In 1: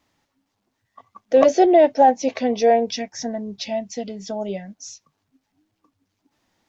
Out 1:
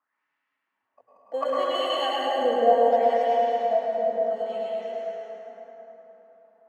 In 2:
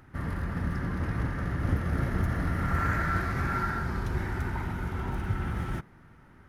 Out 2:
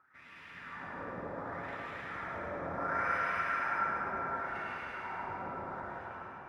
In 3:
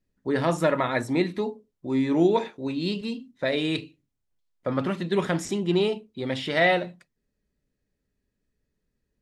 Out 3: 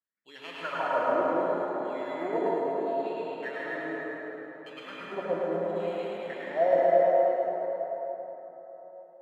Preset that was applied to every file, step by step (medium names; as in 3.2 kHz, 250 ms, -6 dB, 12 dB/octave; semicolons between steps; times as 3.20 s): chunks repeated in reverse 209 ms, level -8.5 dB; treble shelf 3.2 kHz -12 dB; in parallel at -4 dB: sample-and-hold 12×; on the sum: wah-wah 0.7 Hz 530–2800 Hz, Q 5; on a send: thinning echo 107 ms, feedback 67%, high-pass 440 Hz, level -5 dB; on the sum: plate-style reverb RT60 4.2 s, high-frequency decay 0.4×, pre-delay 90 ms, DRR -5.5 dB; trim -2.5 dB